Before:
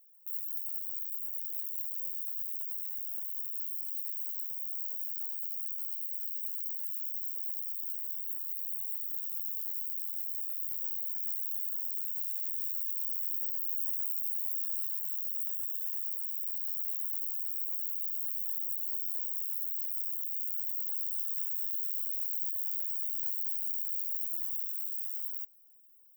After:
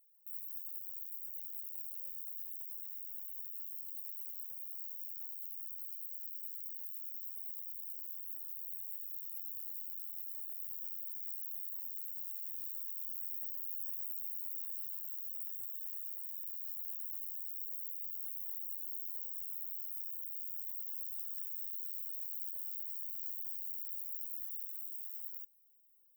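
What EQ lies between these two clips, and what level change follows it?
distance through air 65 m; differentiator; treble shelf 12 kHz +8.5 dB; +6.5 dB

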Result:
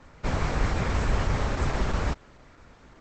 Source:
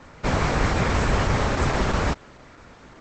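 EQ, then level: bass shelf 66 Hz +9 dB; -7.0 dB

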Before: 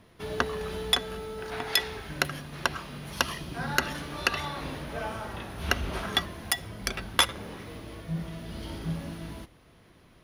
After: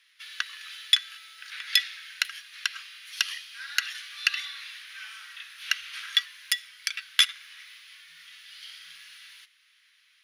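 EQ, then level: inverse Chebyshev high-pass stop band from 790 Hz, stop band 40 dB; peaking EQ 3.4 kHz +10 dB 2.9 oct; -5.5 dB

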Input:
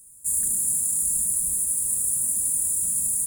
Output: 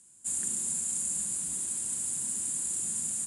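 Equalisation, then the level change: cabinet simulation 100–6400 Hz, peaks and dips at 130 Hz -4 dB, 460 Hz -10 dB, 770 Hz -8 dB, 1.3 kHz -5 dB, 2.1 kHz -4 dB, 5.8 kHz -4 dB; bass shelf 230 Hz -12 dB; +7.0 dB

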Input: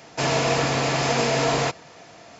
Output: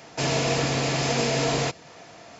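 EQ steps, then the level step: dynamic bell 1.1 kHz, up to -6 dB, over -37 dBFS, Q 0.71; 0.0 dB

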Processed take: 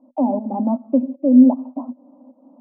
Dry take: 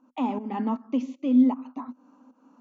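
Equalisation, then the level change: resonant low-pass 570 Hz, resonance Q 4.9; static phaser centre 440 Hz, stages 6; +6.5 dB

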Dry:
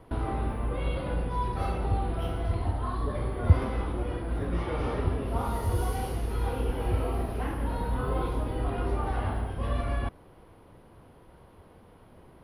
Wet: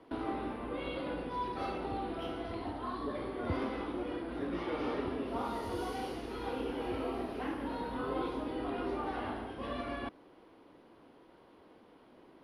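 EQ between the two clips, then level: three-band isolator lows -16 dB, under 210 Hz, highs -22 dB, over 5.5 kHz; peaking EQ 290 Hz +7.5 dB 0.68 oct; treble shelf 4 kHz +11.5 dB; -5.0 dB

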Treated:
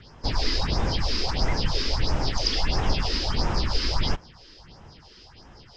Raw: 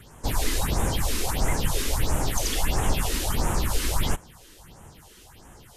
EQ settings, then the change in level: resonant low-pass 5 kHz, resonance Q 9.9; distance through air 170 m; 0.0 dB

